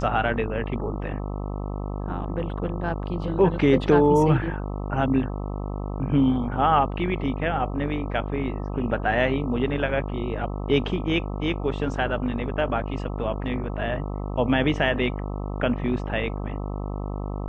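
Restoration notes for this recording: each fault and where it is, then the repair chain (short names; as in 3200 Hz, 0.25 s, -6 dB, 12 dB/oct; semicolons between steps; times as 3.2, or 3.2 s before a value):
buzz 50 Hz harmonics 26 -30 dBFS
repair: de-hum 50 Hz, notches 26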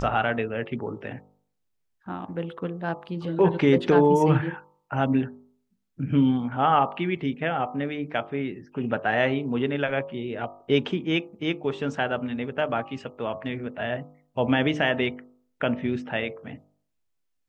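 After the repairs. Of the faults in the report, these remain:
none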